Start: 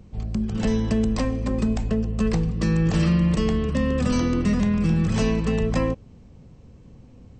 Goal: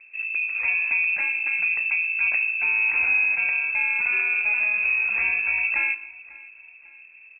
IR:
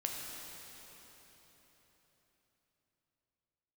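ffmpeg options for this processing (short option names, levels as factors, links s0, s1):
-filter_complex "[0:a]aecho=1:1:547|1094|1641:0.0841|0.037|0.0163,asplit=2[s0][s1];[1:a]atrim=start_sample=2205,afade=t=out:st=0.26:d=0.01,atrim=end_sample=11907[s2];[s1][s2]afir=irnorm=-1:irlink=0,volume=0.316[s3];[s0][s3]amix=inputs=2:normalize=0,lowpass=f=2300:t=q:w=0.5098,lowpass=f=2300:t=q:w=0.6013,lowpass=f=2300:t=q:w=0.9,lowpass=f=2300:t=q:w=2.563,afreqshift=-2700,volume=0.596"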